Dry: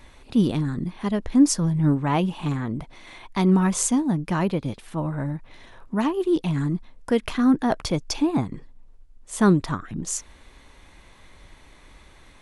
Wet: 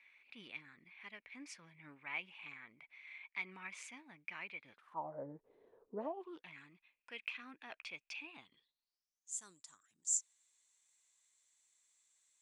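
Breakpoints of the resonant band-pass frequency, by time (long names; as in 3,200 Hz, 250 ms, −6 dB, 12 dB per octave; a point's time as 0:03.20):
resonant band-pass, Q 10
0:04.58 2,300 Hz
0:05.28 440 Hz
0:05.95 440 Hz
0:06.57 2,500 Hz
0:08.25 2,500 Hz
0:09.38 7,400 Hz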